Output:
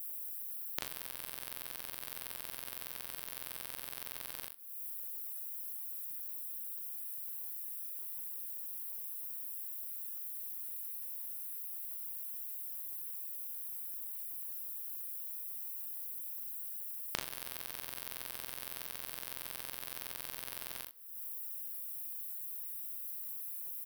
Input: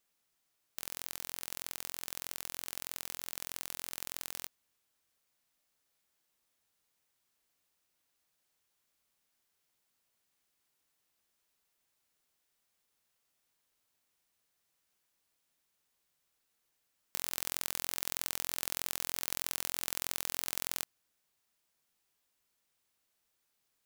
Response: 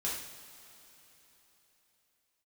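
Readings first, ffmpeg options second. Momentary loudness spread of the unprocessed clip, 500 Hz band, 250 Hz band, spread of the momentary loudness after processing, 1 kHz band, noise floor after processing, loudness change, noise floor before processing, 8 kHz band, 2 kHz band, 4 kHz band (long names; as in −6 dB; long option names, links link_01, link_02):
6 LU, −3.0 dB, can't be measured, 2 LU, −3.5 dB, −47 dBFS, −3.0 dB, −80 dBFS, −5.0 dB, −3.5 dB, −5.5 dB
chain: -filter_complex "[0:a]aexciter=amount=14:drive=7.2:freq=9400,acompressor=threshold=-32dB:ratio=6,aecho=1:1:37|62|77:0.668|0.282|0.224,acrossover=split=6600[link_01][link_02];[link_02]acompressor=threshold=-50dB:ratio=4:attack=1:release=60[link_03];[link_01][link_03]amix=inputs=2:normalize=0,asplit=2[link_04][link_05];[1:a]atrim=start_sample=2205,asetrate=39249,aresample=44100[link_06];[link_05][link_06]afir=irnorm=-1:irlink=0,volume=-25dB[link_07];[link_04][link_07]amix=inputs=2:normalize=0,volume=12.5dB"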